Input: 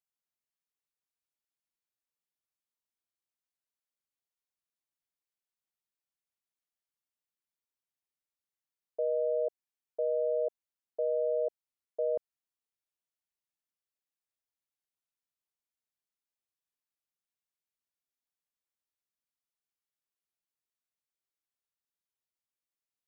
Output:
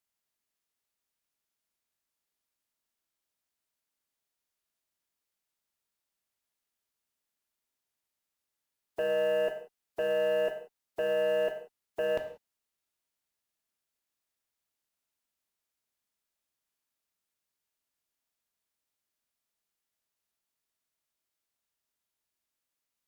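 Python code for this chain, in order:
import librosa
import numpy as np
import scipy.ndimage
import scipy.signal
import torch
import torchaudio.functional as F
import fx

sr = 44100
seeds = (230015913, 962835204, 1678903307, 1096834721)

y = fx.spec_flatten(x, sr, power=0.63)
y = fx.cheby_harmonics(y, sr, harmonics=(2, 5, 6), levels_db=(-27, -15, -44), full_scale_db=-23.0)
y = fx.rev_gated(y, sr, seeds[0], gate_ms=210, shape='falling', drr_db=4.5)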